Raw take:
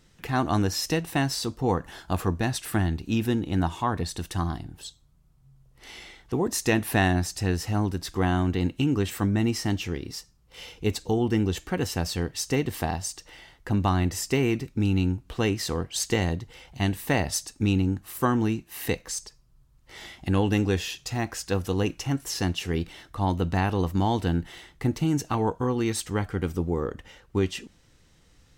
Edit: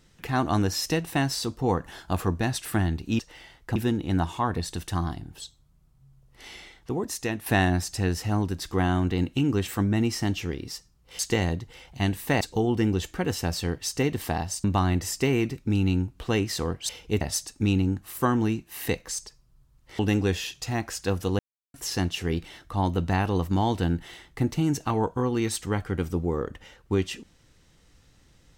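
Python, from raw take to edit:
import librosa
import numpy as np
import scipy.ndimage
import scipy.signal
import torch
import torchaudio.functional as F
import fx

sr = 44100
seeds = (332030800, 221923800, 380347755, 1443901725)

y = fx.edit(x, sr, fx.fade_out_to(start_s=5.94, length_s=0.95, floor_db=-9.0),
    fx.swap(start_s=10.62, length_s=0.32, other_s=15.99, other_length_s=1.22),
    fx.move(start_s=13.17, length_s=0.57, to_s=3.19),
    fx.cut(start_s=19.99, length_s=0.44),
    fx.silence(start_s=21.83, length_s=0.35), tone=tone)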